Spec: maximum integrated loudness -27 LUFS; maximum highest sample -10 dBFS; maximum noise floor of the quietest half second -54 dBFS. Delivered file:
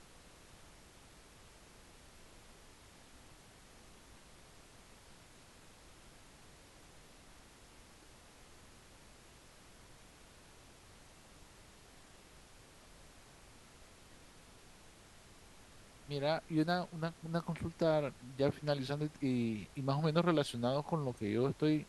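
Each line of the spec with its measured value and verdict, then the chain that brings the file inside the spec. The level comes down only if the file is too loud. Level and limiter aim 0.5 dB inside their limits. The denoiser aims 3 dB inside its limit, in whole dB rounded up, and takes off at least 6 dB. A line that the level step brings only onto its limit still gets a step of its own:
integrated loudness -36.0 LUFS: pass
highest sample -16.5 dBFS: pass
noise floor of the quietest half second -59 dBFS: pass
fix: none needed

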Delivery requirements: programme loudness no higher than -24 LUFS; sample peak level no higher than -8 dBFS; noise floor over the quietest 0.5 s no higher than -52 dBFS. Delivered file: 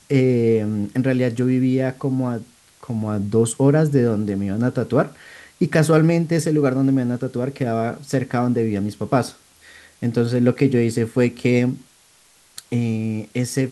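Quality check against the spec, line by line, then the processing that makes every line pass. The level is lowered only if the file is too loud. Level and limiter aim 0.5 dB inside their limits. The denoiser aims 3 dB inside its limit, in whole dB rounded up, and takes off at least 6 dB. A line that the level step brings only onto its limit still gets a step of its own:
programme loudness -20.5 LUFS: fail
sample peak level -4.0 dBFS: fail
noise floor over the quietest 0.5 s -54 dBFS: pass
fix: trim -4 dB; peak limiter -8.5 dBFS

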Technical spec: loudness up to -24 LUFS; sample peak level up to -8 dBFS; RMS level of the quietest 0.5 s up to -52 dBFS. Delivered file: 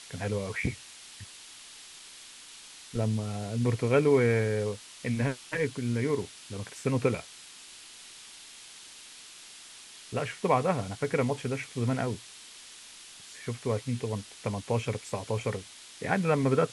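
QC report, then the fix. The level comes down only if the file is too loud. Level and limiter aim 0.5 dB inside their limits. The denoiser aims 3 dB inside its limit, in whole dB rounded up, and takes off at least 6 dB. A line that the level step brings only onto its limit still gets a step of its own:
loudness -30.5 LUFS: pass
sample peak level -11.0 dBFS: pass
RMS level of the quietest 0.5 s -49 dBFS: fail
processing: noise reduction 6 dB, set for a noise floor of -49 dBFS

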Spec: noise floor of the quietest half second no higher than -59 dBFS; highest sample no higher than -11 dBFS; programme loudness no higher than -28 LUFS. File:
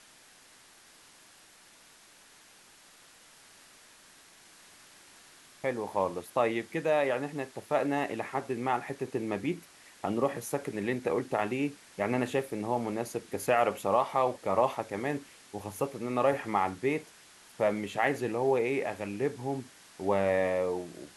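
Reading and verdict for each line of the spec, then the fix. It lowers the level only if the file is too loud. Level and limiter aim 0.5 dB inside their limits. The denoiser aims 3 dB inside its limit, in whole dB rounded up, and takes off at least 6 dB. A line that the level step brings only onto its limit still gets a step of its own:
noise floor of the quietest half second -57 dBFS: fail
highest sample -12.5 dBFS: pass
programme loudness -31.0 LUFS: pass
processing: noise reduction 6 dB, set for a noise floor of -57 dBFS

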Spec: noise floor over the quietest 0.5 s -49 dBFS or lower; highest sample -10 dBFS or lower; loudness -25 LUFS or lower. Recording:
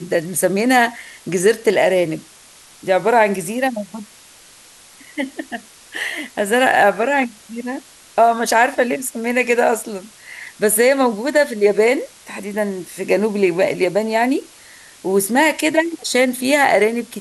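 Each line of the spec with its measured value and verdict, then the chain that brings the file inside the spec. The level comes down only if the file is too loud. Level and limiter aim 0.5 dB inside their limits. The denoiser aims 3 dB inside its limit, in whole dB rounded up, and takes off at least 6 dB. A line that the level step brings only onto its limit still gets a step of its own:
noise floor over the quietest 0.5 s -45 dBFS: fail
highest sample -3.0 dBFS: fail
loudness -17.0 LUFS: fail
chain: trim -8.5 dB

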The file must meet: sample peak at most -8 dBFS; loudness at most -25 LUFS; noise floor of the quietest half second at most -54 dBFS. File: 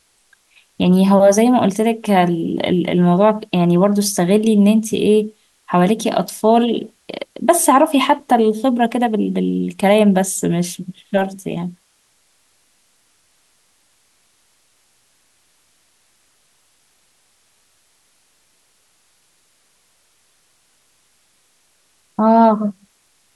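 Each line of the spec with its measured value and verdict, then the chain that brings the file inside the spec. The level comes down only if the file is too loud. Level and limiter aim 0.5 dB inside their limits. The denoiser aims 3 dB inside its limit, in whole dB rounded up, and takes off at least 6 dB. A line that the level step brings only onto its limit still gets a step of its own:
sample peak -2.5 dBFS: fail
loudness -15.5 LUFS: fail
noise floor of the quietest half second -60 dBFS: pass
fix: trim -10 dB

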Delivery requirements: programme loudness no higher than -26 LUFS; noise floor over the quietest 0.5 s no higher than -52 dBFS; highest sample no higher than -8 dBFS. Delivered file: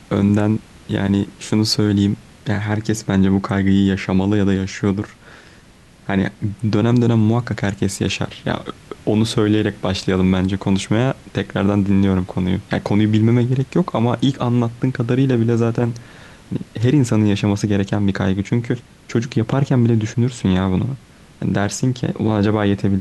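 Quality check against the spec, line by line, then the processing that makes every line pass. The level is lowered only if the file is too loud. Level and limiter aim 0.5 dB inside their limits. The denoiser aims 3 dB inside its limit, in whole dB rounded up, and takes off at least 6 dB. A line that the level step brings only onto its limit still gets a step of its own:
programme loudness -18.5 LUFS: fail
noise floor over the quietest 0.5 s -46 dBFS: fail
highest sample -5.0 dBFS: fail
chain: trim -8 dB

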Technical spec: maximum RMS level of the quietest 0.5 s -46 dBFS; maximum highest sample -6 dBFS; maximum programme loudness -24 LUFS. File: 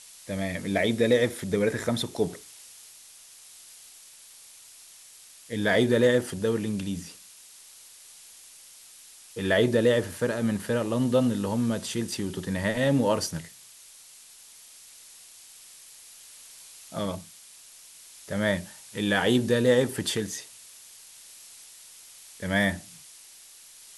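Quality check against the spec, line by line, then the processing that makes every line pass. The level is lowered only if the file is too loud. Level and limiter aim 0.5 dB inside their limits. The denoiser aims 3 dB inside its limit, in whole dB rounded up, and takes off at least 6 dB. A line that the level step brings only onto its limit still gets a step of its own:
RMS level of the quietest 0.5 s -51 dBFS: pass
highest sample -9.5 dBFS: pass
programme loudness -26.5 LUFS: pass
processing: none needed

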